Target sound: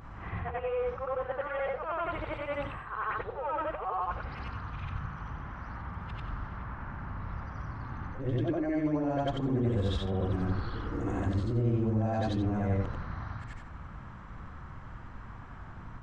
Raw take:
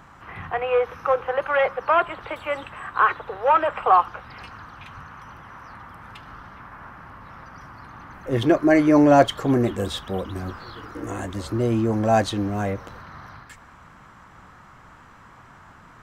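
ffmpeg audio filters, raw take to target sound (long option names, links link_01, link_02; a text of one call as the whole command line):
ffmpeg -i in.wav -af "afftfilt=real='re':imag='-im':win_size=8192:overlap=0.75,lowpass=8200,areverse,acompressor=threshold=-34dB:ratio=5,areverse,aeval=exprs='val(0)+0.000355*(sin(2*PI*50*n/s)+sin(2*PI*2*50*n/s)/2+sin(2*PI*3*50*n/s)/3+sin(2*PI*4*50*n/s)/4+sin(2*PI*5*50*n/s)/5)':channel_layout=same,aemphasis=mode=reproduction:type=bsi,volume=2dB" out.wav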